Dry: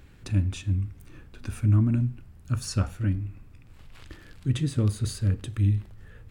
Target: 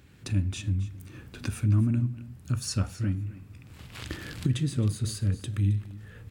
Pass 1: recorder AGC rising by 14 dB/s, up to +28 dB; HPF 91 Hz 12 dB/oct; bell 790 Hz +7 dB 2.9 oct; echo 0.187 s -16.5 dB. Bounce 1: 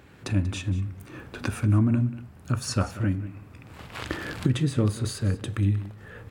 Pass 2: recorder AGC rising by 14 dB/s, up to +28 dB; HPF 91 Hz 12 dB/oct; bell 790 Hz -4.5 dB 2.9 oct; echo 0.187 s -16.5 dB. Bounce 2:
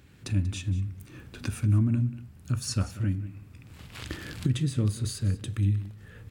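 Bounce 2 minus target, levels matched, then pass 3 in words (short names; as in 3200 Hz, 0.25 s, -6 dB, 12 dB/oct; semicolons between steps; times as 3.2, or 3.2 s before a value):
echo 80 ms early
recorder AGC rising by 14 dB/s, up to +28 dB; HPF 91 Hz 12 dB/oct; bell 790 Hz -4.5 dB 2.9 oct; echo 0.267 s -16.5 dB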